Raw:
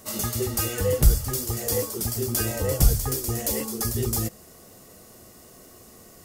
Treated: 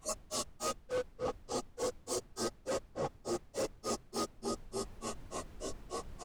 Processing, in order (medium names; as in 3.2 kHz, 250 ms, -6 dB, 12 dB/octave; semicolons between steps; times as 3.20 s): random holes in the spectrogram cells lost 29%; on a send: feedback delay 296 ms, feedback 38%, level -8 dB; on the sum: simulated room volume 460 m³, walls mixed, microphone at 2.2 m; flange 0.8 Hz, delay 8.6 ms, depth 4.6 ms, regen +35%; low-pass that closes with the level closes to 2.5 kHz, closed at -14 dBFS; cabinet simulation 370–9100 Hz, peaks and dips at 390 Hz +4 dB, 670 Hz +6 dB, 1.1 kHz +9 dB, 1.7 kHz -10 dB, 2.9 kHz +3 dB, 7.5 kHz +3 dB; overload inside the chain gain 28.5 dB; dynamic bell 2.2 kHz, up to -6 dB, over -51 dBFS, Q 1; granulator 150 ms, grains 3.4 per s, spray 15 ms, pitch spread up and down by 0 st; added noise brown -60 dBFS; reverse; compression 4:1, threshold -50 dBFS, peak gain reduction 16 dB; reverse; trim +13.5 dB